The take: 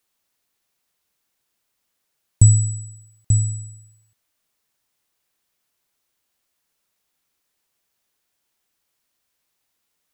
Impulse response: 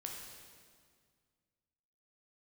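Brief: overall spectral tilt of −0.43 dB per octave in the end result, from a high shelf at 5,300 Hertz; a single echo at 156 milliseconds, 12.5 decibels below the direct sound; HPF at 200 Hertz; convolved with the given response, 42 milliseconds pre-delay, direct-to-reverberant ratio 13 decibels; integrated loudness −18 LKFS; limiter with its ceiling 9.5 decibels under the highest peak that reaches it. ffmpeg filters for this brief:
-filter_complex "[0:a]highpass=200,highshelf=frequency=5300:gain=9,alimiter=limit=-14dB:level=0:latency=1,aecho=1:1:156:0.237,asplit=2[link_01][link_02];[1:a]atrim=start_sample=2205,adelay=42[link_03];[link_02][link_03]afir=irnorm=-1:irlink=0,volume=-11.5dB[link_04];[link_01][link_04]amix=inputs=2:normalize=0,volume=7dB"

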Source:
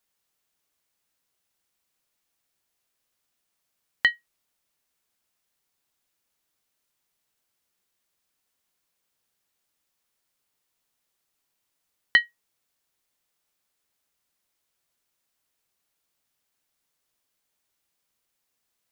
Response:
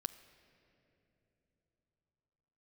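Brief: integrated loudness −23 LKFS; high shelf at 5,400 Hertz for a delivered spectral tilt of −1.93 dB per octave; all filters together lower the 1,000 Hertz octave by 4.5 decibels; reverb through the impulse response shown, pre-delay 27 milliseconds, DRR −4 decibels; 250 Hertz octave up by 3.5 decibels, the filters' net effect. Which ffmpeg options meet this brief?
-filter_complex "[0:a]equalizer=frequency=250:width_type=o:gain=5,equalizer=frequency=1000:width_type=o:gain=-7,highshelf=frequency=5400:gain=9,asplit=2[link_01][link_02];[1:a]atrim=start_sample=2205,adelay=27[link_03];[link_02][link_03]afir=irnorm=-1:irlink=0,volume=6dB[link_04];[link_01][link_04]amix=inputs=2:normalize=0,volume=1.5dB"

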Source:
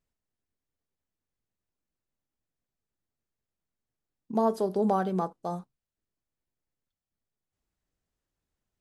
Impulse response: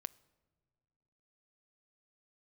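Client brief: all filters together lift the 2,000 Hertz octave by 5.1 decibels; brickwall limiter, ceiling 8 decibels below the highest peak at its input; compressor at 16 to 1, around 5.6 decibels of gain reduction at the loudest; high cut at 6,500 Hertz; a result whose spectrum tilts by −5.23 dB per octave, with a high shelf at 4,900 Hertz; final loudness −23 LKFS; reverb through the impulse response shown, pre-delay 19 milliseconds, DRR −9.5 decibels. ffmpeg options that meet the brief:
-filter_complex "[0:a]lowpass=6500,equalizer=frequency=2000:width_type=o:gain=8.5,highshelf=frequency=4900:gain=-4.5,acompressor=threshold=-25dB:ratio=16,alimiter=level_in=0.5dB:limit=-24dB:level=0:latency=1,volume=-0.5dB,asplit=2[link_01][link_02];[1:a]atrim=start_sample=2205,adelay=19[link_03];[link_02][link_03]afir=irnorm=-1:irlink=0,volume=13dB[link_04];[link_01][link_04]amix=inputs=2:normalize=0,volume=3dB"

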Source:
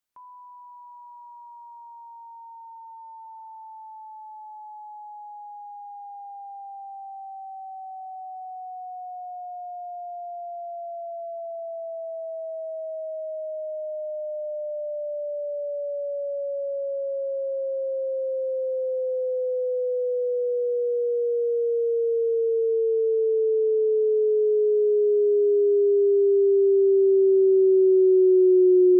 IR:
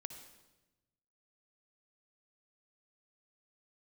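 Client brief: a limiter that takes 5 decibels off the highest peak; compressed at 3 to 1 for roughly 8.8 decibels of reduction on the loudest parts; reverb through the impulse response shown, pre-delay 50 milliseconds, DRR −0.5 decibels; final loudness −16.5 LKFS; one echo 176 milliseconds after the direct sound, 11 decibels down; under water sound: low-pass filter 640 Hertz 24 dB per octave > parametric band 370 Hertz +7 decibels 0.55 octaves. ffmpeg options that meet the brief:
-filter_complex "[0:a]acompressor=threshold=-28dB:ratio=3,alimiter=level_in=3.5dB:limit=-24dB:level=0:latency=1,volume=-3.5dB,aecho=1:1:176:0.282,asplit=2[link_01][link_02];[1:a]atrim=start_sample=2205,adelay=50[link_03];[link_02][link_03]afir=irnorm=-1:irlink=0,volume=4dB[link_04];[link_01][link_04]amix=inputs=2:normalize=0,lowpass=frequency=640:width=0.5412,lowpass=frequency=640:width=1.3066,equalizer=frequency=370:width_type=o:width=0.55:gain=7,volume=8.5dB"

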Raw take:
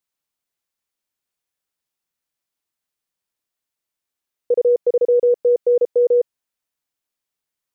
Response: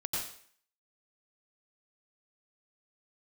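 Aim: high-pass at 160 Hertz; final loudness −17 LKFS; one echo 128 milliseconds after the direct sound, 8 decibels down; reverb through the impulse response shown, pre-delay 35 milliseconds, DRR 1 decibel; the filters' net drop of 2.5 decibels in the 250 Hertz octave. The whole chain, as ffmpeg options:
-filter_complex "[0:a]highpass=160,equalizer=frequency=250:width_type=o:gain=-5,aecho=1:1:128:0.398,asplit=2[link_01][link_02];[1:a]atrim=start_sample=2205,adelay=35[link_03];[link_02][link_03]afir=irnorm=-1:irlink=0,volume=-5dB[link_04];[link_01][link_04]amix=inputs=2:normalize=0,volume=-3dB"

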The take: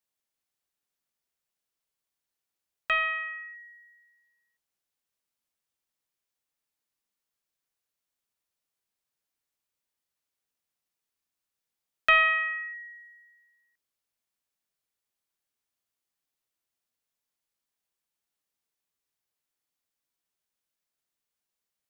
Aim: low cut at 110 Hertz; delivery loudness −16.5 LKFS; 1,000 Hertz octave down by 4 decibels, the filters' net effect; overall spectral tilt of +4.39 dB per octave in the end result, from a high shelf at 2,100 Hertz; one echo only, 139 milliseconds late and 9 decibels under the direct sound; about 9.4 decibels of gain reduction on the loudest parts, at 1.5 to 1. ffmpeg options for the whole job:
ffmpeg -i in.wav -af "highpass=110,equalizer=frequency=1000:width_type=o:gain=-4.5,highshelf=frequency=2100:gain=-3.5,acompressor=threshold=-47dB:ratio=1.5,aecho=1:1:139:0.355,volume=19.5dB" out.wav

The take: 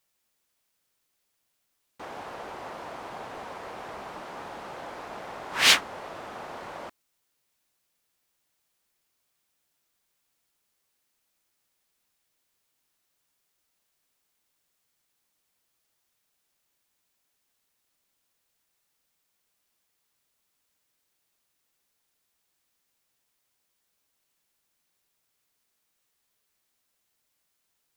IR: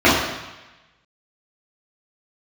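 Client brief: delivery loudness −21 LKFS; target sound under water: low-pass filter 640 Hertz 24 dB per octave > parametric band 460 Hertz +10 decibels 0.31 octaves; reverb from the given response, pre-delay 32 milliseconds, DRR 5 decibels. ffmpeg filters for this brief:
-filter_complex "[0:a]asplit=2[link_01][link_02];[1:a]atrim=start_sample=2205,adelay=32[link_03];[link_02][link_03]afir=irnorm=-1:irlink=0,volume=-32.5dB[link_04];[link_01][link_04]amix=inputs=2:normalize=0,lowpass=frequency=640:width=0.5412,lowpass=frequency=640:width=1.3066,equalizer=frequency=460:width_type=o:width=0.31:gain=10,volume=18.5dB"

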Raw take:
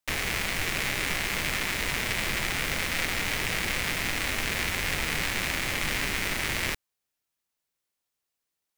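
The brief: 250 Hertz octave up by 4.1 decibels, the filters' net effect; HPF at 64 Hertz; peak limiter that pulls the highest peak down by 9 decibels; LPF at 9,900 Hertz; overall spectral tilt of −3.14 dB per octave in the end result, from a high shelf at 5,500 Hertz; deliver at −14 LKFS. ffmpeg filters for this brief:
ffmpeg -i in.wav -af "highpass=64,lowpass=9900,equalizer=frequency=250:width_type=o:gain=5.5,highshelf=frequency=5500:gain=-5.5,volume=19.5dB,alimiter=limit=-2.5dB:level=0:latency=1" out.wav

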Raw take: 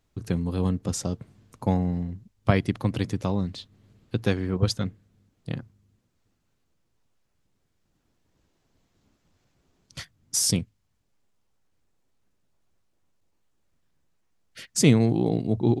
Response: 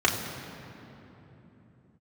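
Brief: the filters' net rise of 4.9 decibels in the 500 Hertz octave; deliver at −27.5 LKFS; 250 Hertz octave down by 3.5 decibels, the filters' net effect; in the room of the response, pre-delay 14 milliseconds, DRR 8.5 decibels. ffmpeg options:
-filter_complex "[0:a]equalizer=frequency=250:width_type=o:gain=-7.5,equalizer=frequency=500:width_type=o:gain=8.5,asplit=2[link_01][link_02];[1:a]atrim=start_sample=2205,adelay=14[link_03];[link_02][link_03]afir=irnorm=-1:irlink=0,volume=-24dB[link_04];[link_01][link_04]amix=inputs=2:normalize=0,volume=-2dB"

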